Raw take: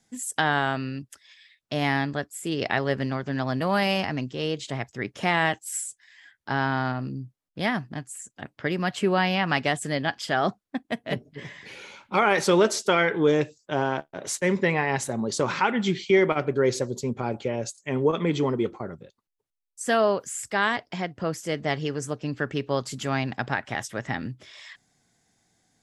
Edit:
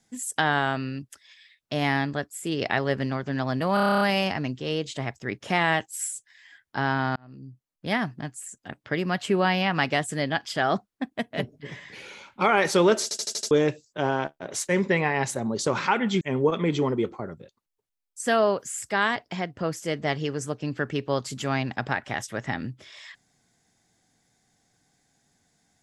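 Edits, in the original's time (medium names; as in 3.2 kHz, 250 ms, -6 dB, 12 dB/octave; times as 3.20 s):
3.74 s: stutter 0.03 s, 10 plays
6.89–7.65 s: fade in
12.76 s: stutter in place 0.08 s, 6 plays
15.94–17.82 s: delete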